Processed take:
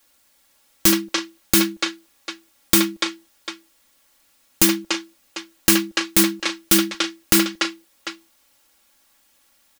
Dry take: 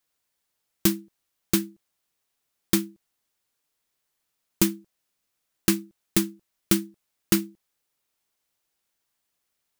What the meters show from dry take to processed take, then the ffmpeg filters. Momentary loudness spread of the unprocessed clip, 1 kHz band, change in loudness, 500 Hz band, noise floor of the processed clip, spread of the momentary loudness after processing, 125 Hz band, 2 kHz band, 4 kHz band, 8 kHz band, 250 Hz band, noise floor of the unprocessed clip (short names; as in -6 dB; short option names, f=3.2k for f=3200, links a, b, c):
16 LU, +13.0 dB, +7.0 dB, +6.5 dB, -61 dBFS, 19 LU, 0.0 dB, +13.0 dB, +12.5 dB, +10.0 dB, +5.5 dB, -79 dBFS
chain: -filter_complex "[0:a]aecho=1:1:3.6:0.77,acrossover=split=490|5500[a][b][c];[a]acompressor=threshold=-29dB:ratio=6[d];[b]aecho=1:1:73|290|326|746:0.251|0.355|0.112|0.133[e];[d][e][c]amix=inputs=3:normalize=0,alimiter=level_in=17dB:limit=-1dB:release=50:level=0:latency=1,volume=-1dB"